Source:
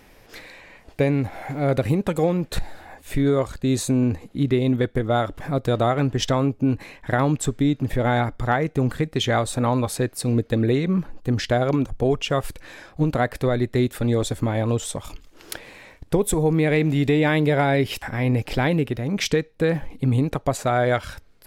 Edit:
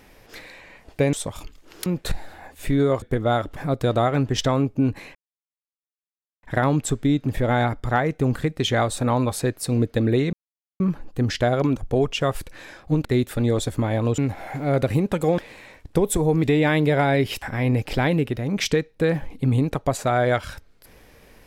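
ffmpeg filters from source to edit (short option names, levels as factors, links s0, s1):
-filter_complex "[0:a]asplit=10[s0][s1][s2][s3][s4][s5][s6][s7][s8][s9];[s0]atrim=end=1.132[s10];[s1]atrim=start=14.818:end=15.552[s11];[s2]atrim=start=2.328:end=3.492[s12];[s3]atrim=start=4.858:end=6.99,asetpts=PTS-STARTPTS,afade=t=out:st=2.128:d=0.004:c=hsin,apad=pad_dur=1.28[s13];[s4]atrim=start=6.99:end=10.89,asetpts=PTS-STARTPTS,afade=t=in:d=0.004:c=hsin,afade=t=out:st=3.896:d=0.004:c=hsin,apad=pad_dur=0.47[s14];[s5]atrim=start=10.89:end=13.142,asetpts=PTS-STARTPTS,afade=t=in:d=0.004:c=hsin[s15];[s6]atrim=start=13.688:end=14.822[s16];[s7]atrim=start=1.128:end=2.332[s17];[s8]atrim=start=15.548:end=16.602[s18];[s9]atrim=start=17.028[s19];[s10][s11]acrossfade=d=0.004:c1=hsin:c2=hsin[s20];[s20][s12]acrossfade=d=0.004:c1=hsin:c2=hsin[s21];[s13][s14][s15]concat=n=3:v=0:a=1[s22];[s21][s22]acrossfade=d=0.004:c1=hsin:c2=hsin[s23];[s23][s16]acrossfade=d=0.004:c1=hsin:c2=hsin[s24];[s24][s17]acrossfade=d=0.004:c1=hsin:c2=hsin[s25];[s25][s18]acrossfade=d=0.004:c1=hsin:c2=hsin[s26];[s26][s19]acrossfade=d=0.004:c1=hsin:c2=hsin"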